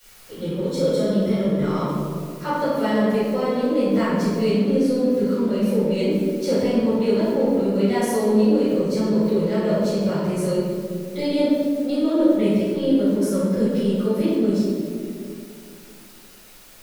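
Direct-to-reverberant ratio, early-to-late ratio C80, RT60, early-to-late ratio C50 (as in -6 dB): -14.5 dB, 0.0 dB, 2.3 s, -3.0 dB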